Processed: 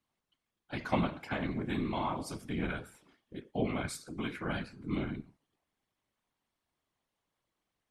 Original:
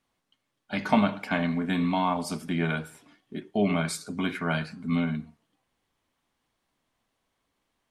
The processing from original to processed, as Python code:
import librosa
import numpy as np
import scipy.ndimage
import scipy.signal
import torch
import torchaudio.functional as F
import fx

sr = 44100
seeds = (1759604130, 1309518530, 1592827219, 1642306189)

y = fx.whisperise(x, sr, seeds[0])
y = F.gain(torch.from_numpy(y), -8.0).numpy()